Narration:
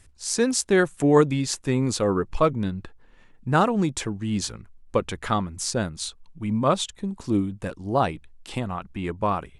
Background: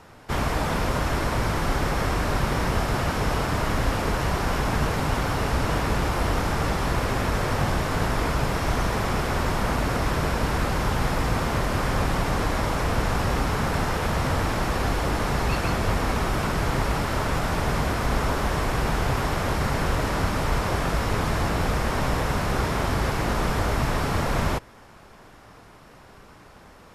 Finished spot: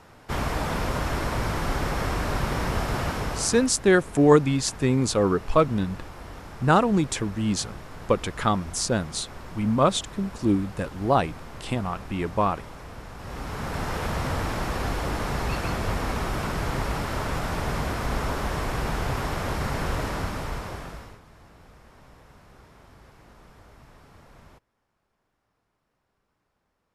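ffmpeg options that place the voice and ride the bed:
-filter_complex "[0:a]adelay=3150,volume=1dB[a];[1:a]volume=11dB,afade=t=out:st=3.06:d=0.68:silence=0.188365,afade=t=in:st=13.17:d=0.81:silence=0.211349,afade=t=out:st=20:d=1.2:silence=0.0630957[b];[a][b]amix=inputs=2:normalize=0"

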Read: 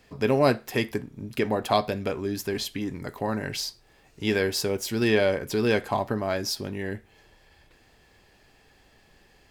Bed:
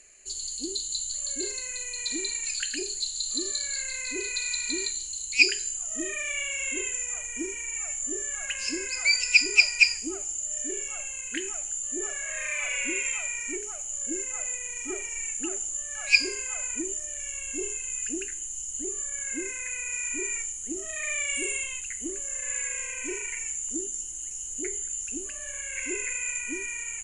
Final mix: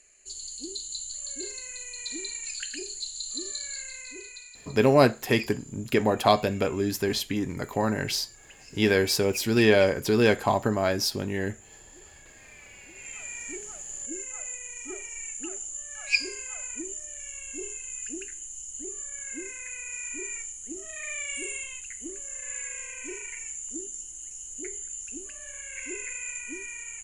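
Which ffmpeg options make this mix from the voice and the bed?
-filter_complex "[0:a]adelay=4550,volume=2.5dB[a];[1:a]volume=11dB,afade=t=out:st=3.7:d=0.85:silence=0.16788,afade=t=in:st=12.94:d=0.46:silence=0.16788[b];[a][b]amix=inputs=2:normalize=0"

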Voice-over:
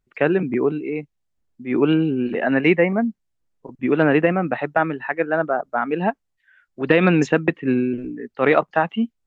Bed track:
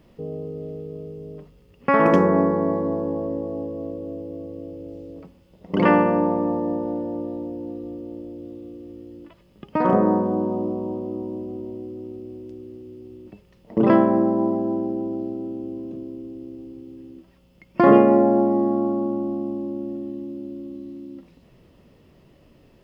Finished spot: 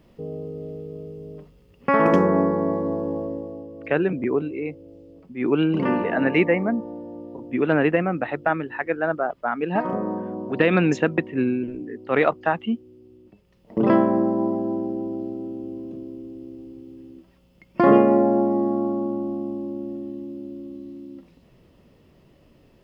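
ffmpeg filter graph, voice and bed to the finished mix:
-filter_complex "[0:a]adelay=3700,volume=-3dB[a];[1:a]volume=6dB,afade=t=out:st=3.17:d=0.47:silence=0.421697,afade=t=in:st=13.35:d=0.55:silence=0.446684[b];[a][b]amix=inputs=2:normalize=0"

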